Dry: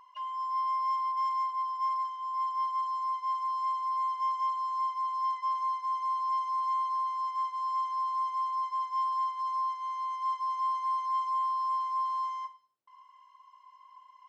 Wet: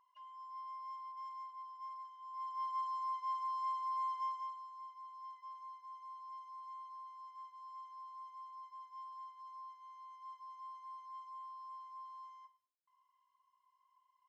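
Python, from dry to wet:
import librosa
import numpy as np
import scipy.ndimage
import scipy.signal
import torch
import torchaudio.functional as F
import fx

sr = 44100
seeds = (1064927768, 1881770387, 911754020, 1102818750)

y = fx.gain(x, sr, db=fx.line((2.11, -17.0), (2.75, -7.0), (4.19, -7.0), (4.72, -19.5)))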